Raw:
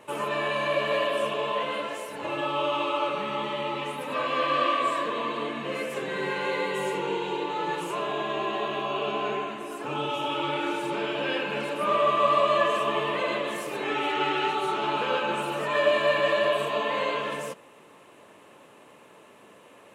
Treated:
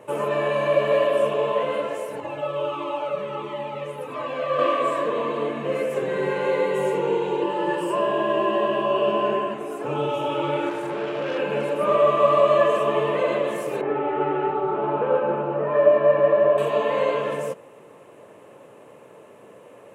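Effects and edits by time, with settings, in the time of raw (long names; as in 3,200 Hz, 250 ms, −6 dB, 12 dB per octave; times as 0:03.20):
0:02.20–0:04.59: flanger whose copies keep moving one way falling 1.5 Hz
0:07.42–0:09.54: EQ curve with evenly spaced ripples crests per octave 1.3, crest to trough 11 dB
0:10.69–0:11.38: saturating transformer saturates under 1,800 Hz
0:13.81–0:16.58: low-pass filter 1,400 Hz
whole clip: graphic EQ with 10 bands 125 Hz +8 dB, 500 Hz +9 dB, 4,000 Hz −6 dB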